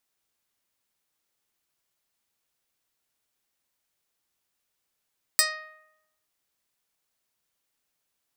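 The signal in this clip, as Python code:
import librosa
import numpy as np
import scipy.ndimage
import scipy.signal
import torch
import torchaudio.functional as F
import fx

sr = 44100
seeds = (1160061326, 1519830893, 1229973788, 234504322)

y = fx.pluck(sr, length_s=0.87, note=75, decay_s=0.89, pick=0.18, brightness='medium')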